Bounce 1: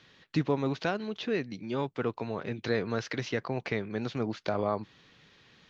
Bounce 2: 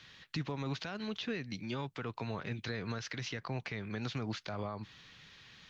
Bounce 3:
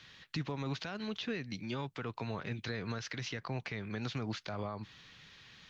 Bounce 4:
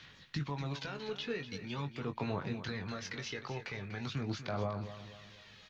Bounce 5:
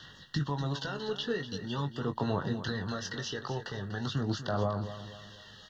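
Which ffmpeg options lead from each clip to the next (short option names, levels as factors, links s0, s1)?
-filter_complex "[0:a]equalizer=f=390:w=0.53:g=-10.5,alimiter=level_in=2.11:limit=0.0631:level=0:latency=1:release=126,volume=0.473,acrossover=split=370[s0][s1];[s1]acompressor=threshold=0.00631:ratio=3[s2];[s0][s2]amix=inputs=2:normalize=0,volume=1.78"
-af anull
-filter_complex "[0:a]aphaser=in_gain=1:out_gain=1:delay=2.4:decay=0.46:speed=0.44:type=sinusoidal,asplit=2[s0][s1];[s1]adelay=21,volume=0.422[s2];[s0][s2]amix=inputs=2:normalize=0,asplit=2[s3][s4];[s4]aecho=0:1:243|486|729|972:0.251|0.105|0.0443|0.0186[s5];[s3][s5]amix=inputs=2:normalize=0,volume=0.75"
-af "asuperstop=centerf=2300:order=20:qfactor=3,volume=1.88"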